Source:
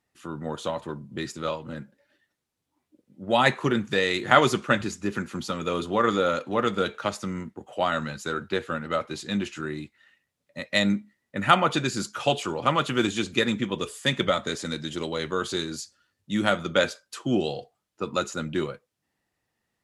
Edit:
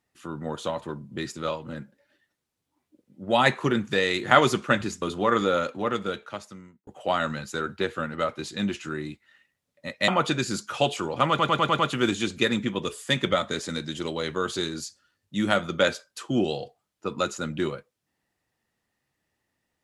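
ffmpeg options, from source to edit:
-filter_complex "[0:a]asplit=9[a][b][c][d][e][f][g][h][i];[a]atrim=end=5.022[j];[b]atrim=start=5.738:end=7.59,asetpts=PTS-STARTPTS,afade=t=out:st=0.542:d=1.31[k];[c]atrim=start=7.59:end=10.802,asetpts=PTS-STARTPTS,afade=t=in:d=0.004:c=hsin[l];[d]atrim=start=11.538:end=12.852[m];[e]atrim=start=12.748:end=12.852[n];[f]atrim=start=12.748:end=12.852[o];[g]atrim=start=12.748:end=12.852[p];[h]atrim=start=12.748:end=12.852[q];[i]atrim=start=12.748[r];[k][l]concat=n=2:v=0:a=1[s];[j][s]acrossfade=d=0.004:c1=hsin:c2=hsin[t];[t][m]acrossfade=d=0.004:c1=hsin:c2=hsin[u];[u][n]acrossfade=d=0.004:c1=hsin:c2=hsin[v];[v][o]acrossfade=d=0.004:c1=hsin:c2=hsin[w];[w][p]acrossfade=d=0.004:c1=hsin:c2=hsin[x];[x][q]acrossfade=d=0.004:c1=hsin:c2=hsin[y];[y][r]acrossfade=d=0.004:c1=hsin:c2=hsin"

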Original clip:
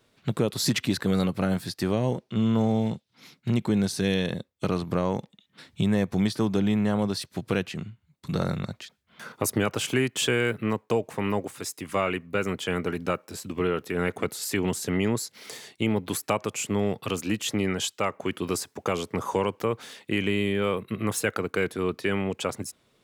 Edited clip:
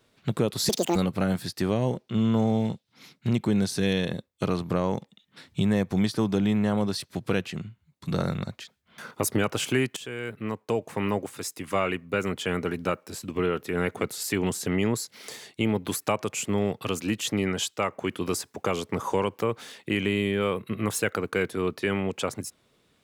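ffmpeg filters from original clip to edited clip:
-filter_complex "[0:a]asplit=4[a][b][c][d];[a]atrim=end=0.694[e];[b]atrim=start=0.69:end=1.17,asetpts=PTS-STARTPTS,asetrate=79380,aresample=44100[f];[c]atrim=start=1.166:end=10.18,asetpts=PTS-STARTPTS,afade=t=out:st=9.01:d=0.004:c=hsin:silence=0.125893[g];[d]atrim=start=10.18,asetpts=PTS-STARTPTS,afade=t=in:d=1:silence=0.125893[h];[e][f]acrossfade=d=0.004:c1=hsin:c2=hsin[i];[g][h]concat=n=2:v=0:a=1[j];[i][j]acrossfade=d=0.004:c1=hsin:c2=hsin"

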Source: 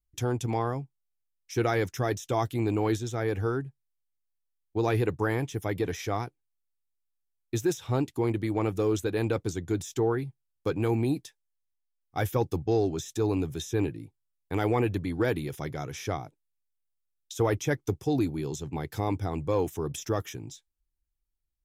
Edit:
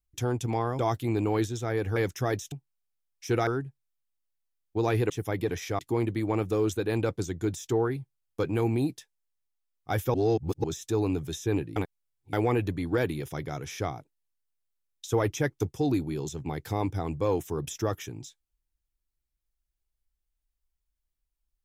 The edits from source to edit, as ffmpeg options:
-filter_complex "[0:a]asplit=11[a][b][c][d][e][f][g][h][i][j][k];[a]atrim=end=0.792[l];[b]atrim=start=2.298:end=3.472[m];[c]atrim=start=1.738:end=2.302[n];[d]atrim=start=0.788:end=1.742[o];[e]atrim=start=3.468:end=5.102[p];[f]atrim=start=5.468:end=6.162[q];[g]atrim=start=8.058:end=12.412[r];[h]atrim=start=12.408:end=12.912,asetpts=PTS-STARTPTS,areverse[s];[i]atrim=start=12.908:end=14.032[t];[j]atrim=start=14.028:end=14.602,asetpts=PTS-STARTPTS,areverse[u];[k]atrim=start=14.598[v];[l][m]acrossfade=d=0.004:c1=hsin:c2=hsin[w];[w][n]acrossfade=d=0.004:c1=hsin:c2=hsin[x];[x][o]acrossfade=d=0.004:c1=hsin:c2=hsin[y];[y][p]acrossfade=d=0.004:c1=hsin:c2=hsin[z];[z][q]acrossfade=d=0.004:c1=hsin:c2=hsin[aa];[aa][r]acrossfade=d=0.004:c1=hsin:c2=hsin[ab];[ab][s]acrossfade=d=0.004:c1=hsin:c2=hsin[ac];[ac][t]acrossfade=d=0.004:c1=hsin:c2=hsin[ad];[ad][u]acrossfade=d=0.004:c1=hsin:c2=hsin[ae];[ae][v]acrossfade=d=0.004:c1=hsin:c2=hsin"

